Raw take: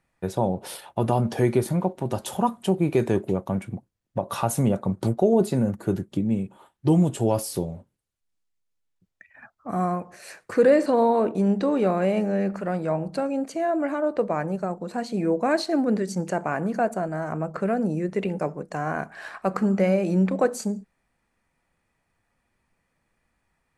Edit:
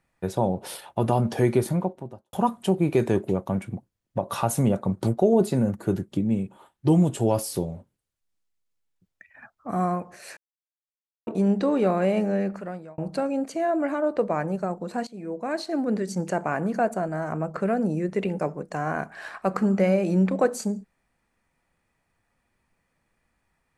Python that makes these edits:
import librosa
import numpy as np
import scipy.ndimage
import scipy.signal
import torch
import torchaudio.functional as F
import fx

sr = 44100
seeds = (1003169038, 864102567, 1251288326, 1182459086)

y = fx.studio_fade_out(x, sr, start_s=1.64, length_s=0.69)
y = fx.edit(y, sr, fx.silence(start_s=10.37, length_s=0.9),
    fx.fade_out_span(start_s=12.33, length_s=0.65),
    fx.fade_in_from(start_s=15.07, length_s=1.19, floor_db=-16.0), tone=tone)